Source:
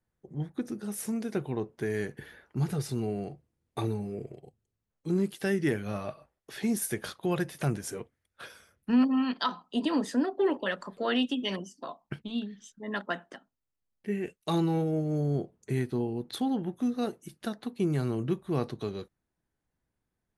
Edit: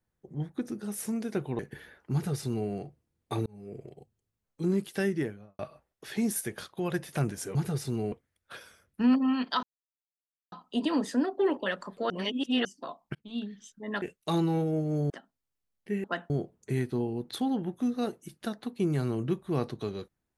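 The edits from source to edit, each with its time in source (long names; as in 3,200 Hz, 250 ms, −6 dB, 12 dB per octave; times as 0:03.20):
0:01.59–0:02.05: remove
0:02.59–0:03.16: duplicate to 0:08.01
0:03.92–0:04.37: fade in
0:05.45–0:06.05: fade out and dull
0:06.87–0:07.40: clip gain −3 dB
0:09.52: splice in silence 0.89 s
0:11.10–0:11.65: reverse
0:12.15–0:12.44: fade in
0:13.02–0:13.28: swap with 0:14.22–0:15.30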